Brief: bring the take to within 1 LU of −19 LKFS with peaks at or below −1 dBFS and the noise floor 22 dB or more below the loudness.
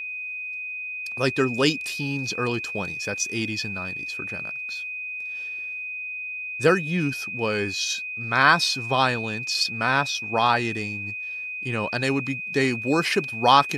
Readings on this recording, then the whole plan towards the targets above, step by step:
interfering tone 2,500 Hz; level of the tone −30 dBFS; integrated loudness −24.5 LKFS; sample peak −2.0 dBFS; target loudness −19.0 LKFS
→ notch filter 2,500 Hz, Q 30
level +5.5 dB
brickwall limiter −1 dBFS

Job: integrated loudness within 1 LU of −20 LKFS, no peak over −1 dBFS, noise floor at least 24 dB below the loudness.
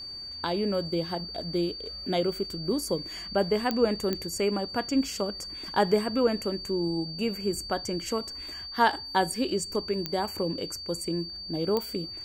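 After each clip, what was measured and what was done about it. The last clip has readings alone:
number of clicks 4; interfering tone 4,600 Hz; level of the tone −37 dBFS; integrated loudness −29.0 LKFS; sample peak −8.5 dBFS; target loudness −20.0 LKFS
→ click removal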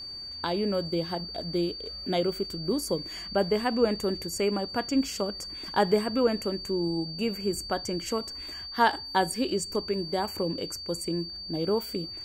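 number of clicks 0; interfering tone 4,600 Hz; level of the tone −37 dBFS
→ notch filter 4,600 Hz, Q 30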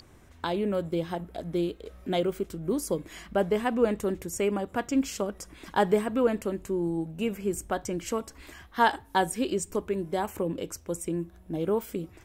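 interfering tone none found; integrated loudness −29.5 LKFS; sample peak −9.0 dBFS; target loudness −20.0 LKFS
→ level +9.5 dB
brickwall limiter −1 dBFS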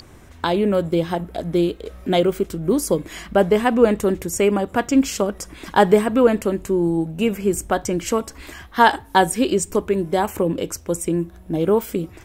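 integrated loudness −20.0 LKFS; sample peak −1.0 dBFS; background noise floor −44 dBFS

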